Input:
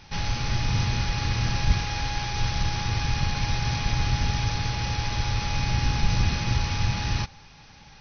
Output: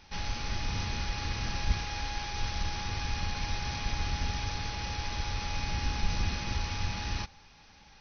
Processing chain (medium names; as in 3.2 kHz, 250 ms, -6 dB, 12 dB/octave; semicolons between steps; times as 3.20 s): peaking EQ 130 Hz -13.5 dB 0.41 oct; trim -6 dB